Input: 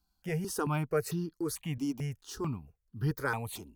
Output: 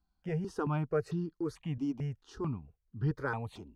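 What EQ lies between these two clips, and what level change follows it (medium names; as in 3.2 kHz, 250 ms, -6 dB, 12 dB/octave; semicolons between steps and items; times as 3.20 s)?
dynamic bell 2.2 kHz, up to -5 dB, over -56 dBFS, Q 4.7; tape spacing loss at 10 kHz 23 dB; 0.0 dB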